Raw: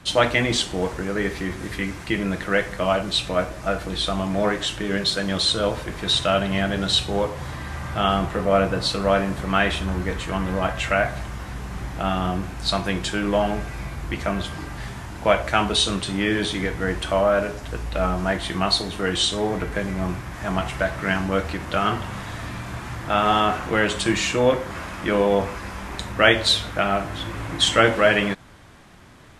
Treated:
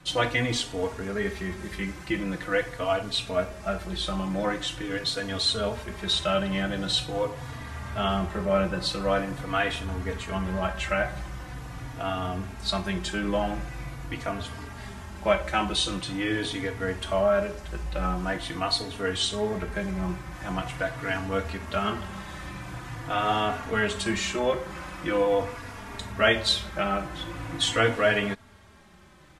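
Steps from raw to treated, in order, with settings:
barber-pole flanger 3.5 ms −0.44 Hz
level −2.5 dB

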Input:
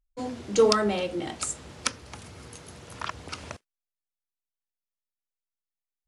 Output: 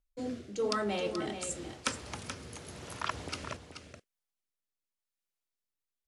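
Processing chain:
low-shelf EQ 140 Hz −4 dB
reversed playback
downward compressor 8 to 1, threshold −32 dBFS, peak gain reduction 16.5 dB
reversed playback
rotating-speaker cabinet horn 0.9 Hz
single-tap delay 430 ms −9 dB
level +3 dB

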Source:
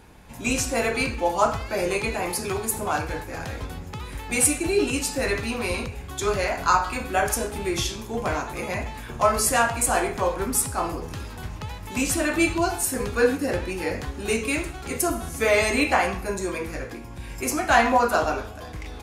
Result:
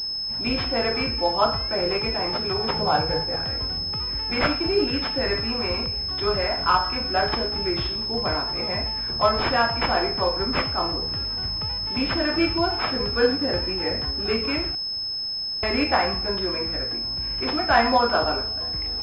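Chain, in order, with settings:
0:02.59–0:03.36: thirty-one-band graphic EQ 160 Hz +11 dB, 500 Hz +9 dB, 800 Hz +7 dB
0:14.75–0:15.63: fill with room tone
switching amplifier with a slow clock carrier 5,200 Hz

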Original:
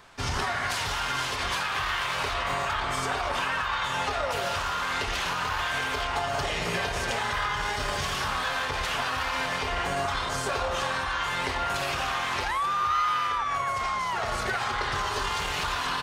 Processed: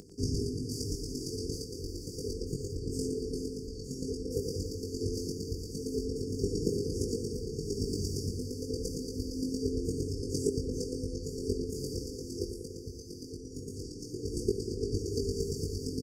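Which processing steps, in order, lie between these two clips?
high-shelf EQ 2,700 Hz −5.5 dB
convolution reverb RT60 1.0 s, pre-delay 3 ms, DRR 10.5 dB
in parallel at −4.5 dB: soft clipping −28.5 dBFS, distortion −12 dB
on the sum: high-pass filter 48 Hz
square-wave tremolo 8.7 Hz, depth 65%, duty 10%
linear-phase brick-wall band-stop 500–4,500 Hz
double-tracking delay 20 ms −3.5 dB
upward compression, threshold −50 dBFS
parametric band 280 Hz +5.5 dB 1.3 octaves
bucket-brigade delay 96 ms, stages 2,048, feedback 78%, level −9 dB
level +2.5 dB

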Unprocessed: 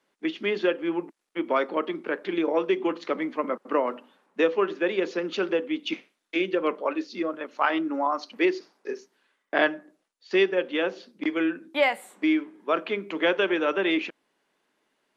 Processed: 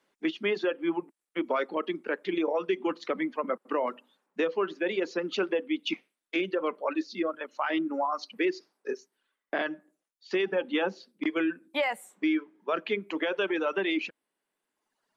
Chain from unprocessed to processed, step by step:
brickwall limiter −18 dBFS, peak gain reduction 10.5 dB
0:10.46–0:10.96: hollow resonant body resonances 220/830 Hz, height 14 dB, ringing for 90 ms
reverb reduction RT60 1.4 s

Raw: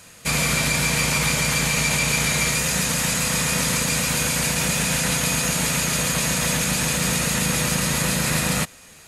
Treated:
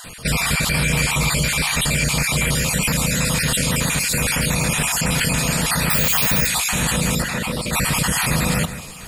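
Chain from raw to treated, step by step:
time-frequency cells dropped at random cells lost 35%
in parallel at +1 dB: compressor whose output falls as the input rises −29 dBFS, ratio −0.5
0:07.22–0:07.73: on the sum: bass and treble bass −6 dB, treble −11 dB
on a send: delay that swaps between a low-pass and a high-pass 153 ms, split 2,300 Hz, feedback 53%, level −12 dB
0:05.90–0:06.47: on the sum: bad sample-rate conversion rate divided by 2×, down filtered, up zero stuff
low-shelf EQ 82 Hz +10 dB
notch filter 6,100 Hz, Q 5.6

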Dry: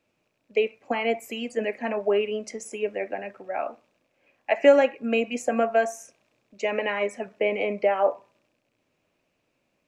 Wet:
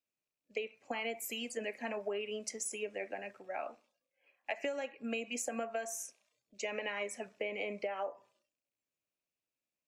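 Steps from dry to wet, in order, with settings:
first-order pre-emphasis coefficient 0.8
downward compressor 16 to 1, threshold −37 dBFS, peak gain reduction 14.5 dB
noise reduction from a noise print of the clip's start 16 dB
level +3.5 dB

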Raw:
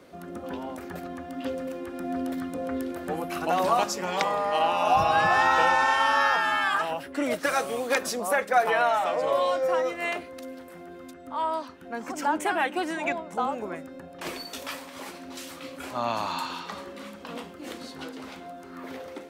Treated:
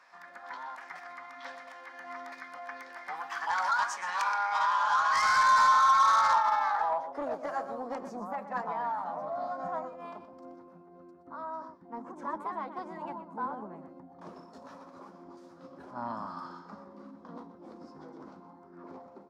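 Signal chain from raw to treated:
band-pass filter sweep 1,700 Hz → 210 Hz, 0:05.19–0:08.18
single-tap delay 123 ms −12 dB
formants moved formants +3 semitones
soft clipping −28.5 dBFS, distortion −9 dB
drawn EQ curve 210 Hz 0 dB, 380 Hz −6 dB, 1,000 Hz +12 dB, 2,800 Hz −5 dB, 5,200 Hz +11 dB, 12,000 Hz +3 dB

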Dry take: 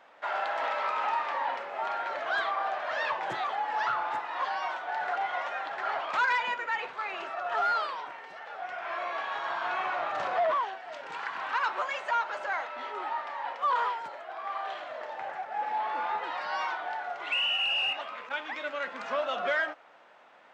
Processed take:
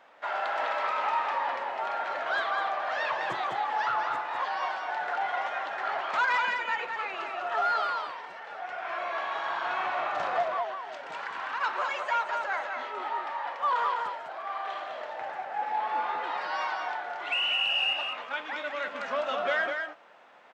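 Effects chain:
0:10.42–0:11.61: downward compressor 2.5 to 1, threshold −33 dBFS, peak gain reduction 6 dB
single-tap delay 204 ms −5 dB

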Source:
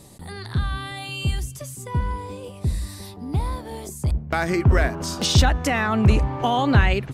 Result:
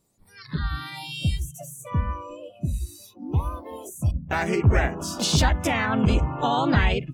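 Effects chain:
pitch-shifted copies added +3 semitones −2 dB
noise reduction from a noise print of the clip's start 22 dB
level −4 dB

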